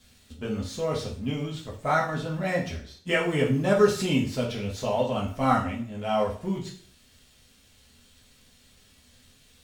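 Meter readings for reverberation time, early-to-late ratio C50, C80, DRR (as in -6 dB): 0.50 s, 8.0 dB, 12.5 dB, -4.0 dB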